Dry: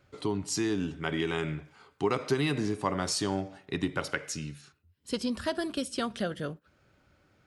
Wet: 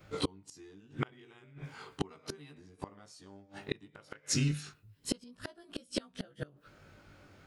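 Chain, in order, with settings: short-time spectra conjugated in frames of 41 ms; inverted gate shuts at -28 dBFS, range -32 dB; trim +10.5 dB

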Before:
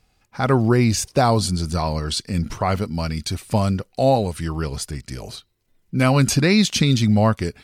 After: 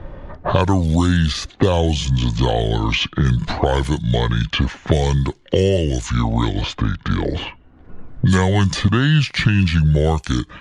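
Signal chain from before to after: level-controlled noise filter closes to 1.3 kHz, open at -17.5 dBFS; tape speed -28%; three bands compressed up and down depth 100%; trim +1.5 dB

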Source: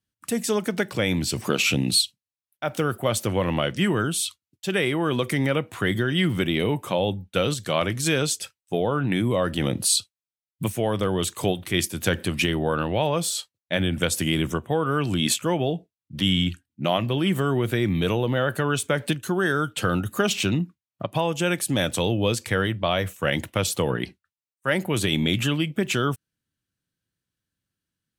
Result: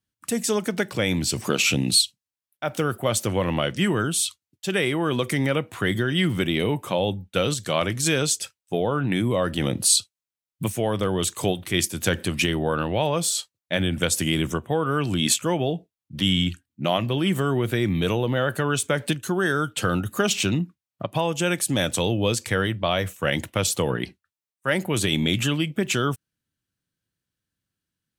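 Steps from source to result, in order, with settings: dynamic bell 7 kHz, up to +4 dB, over -42 dBFS, Q 1.1

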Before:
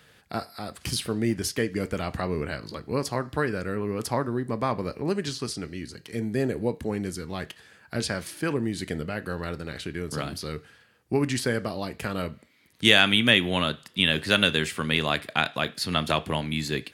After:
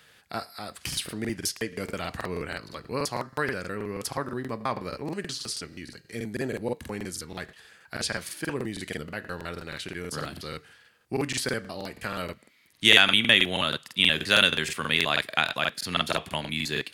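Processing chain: tilt shelf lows -4 dB, about 650 Hz; crackling interface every 0.16 s, samples 2048, repeat, from 0.88 s; trim -2.5 dB

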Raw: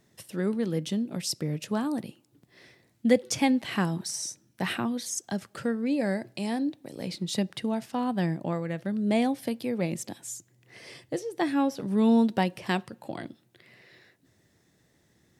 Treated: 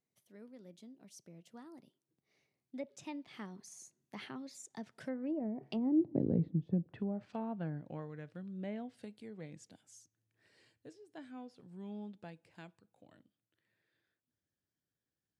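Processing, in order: Doppler pass-by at 6.19 s, 35 m/s, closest 2 m; low-pass that closes with the level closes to 340 Hz, closed at -46 dBFS; trim +15 dB

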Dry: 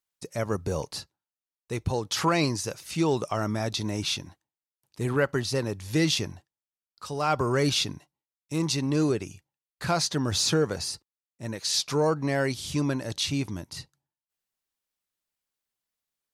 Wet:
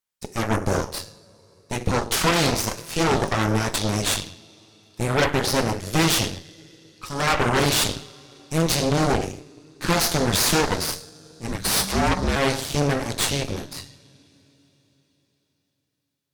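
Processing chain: two-slope reverb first 0.58 s, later 4.2 s, from -20 dB, DRR 4 dB; Chebyshev shaper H 8 -8 dB, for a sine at -10.5 dBFS; 11.48–12.36 s: frequency shift -200 Hz

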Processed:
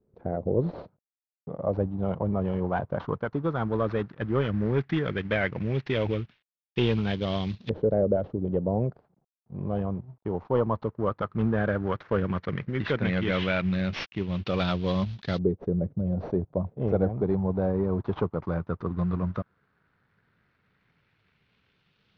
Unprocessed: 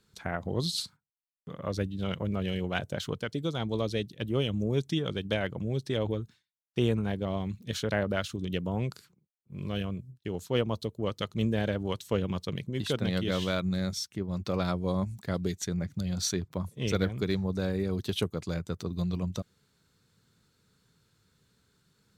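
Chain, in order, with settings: CVSD coder 32 kbps; waveshaping leveller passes 1; LFO low-pass saw up 0.13 Hz 460–3900 Hz

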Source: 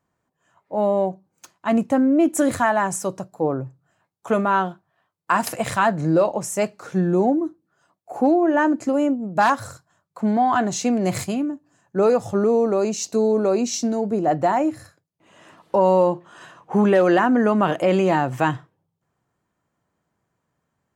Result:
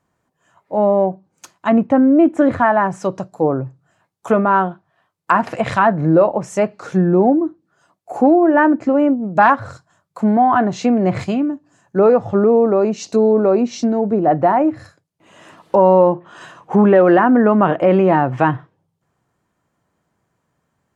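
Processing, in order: low-pass that closes with the level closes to 1.8 kHz, closed at -18 dBFS; 8.54–9.56 s: dynamic bell 2.2 kHz, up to +4 dB, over -33 dBFS, Q 1; trim +5.5 dB

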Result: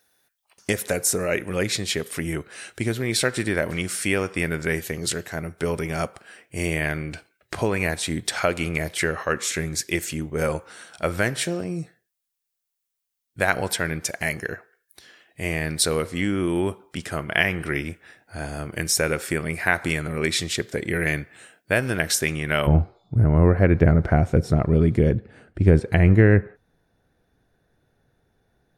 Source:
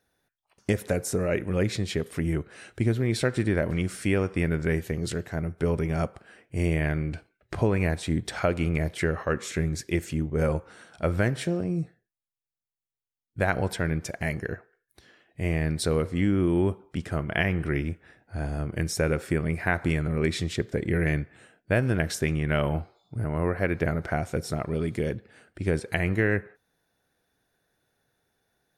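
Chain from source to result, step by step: tilt EQ +2.5 dB/octave, from 22.66 s -2.5 dB/octave; trim +4.5 dB

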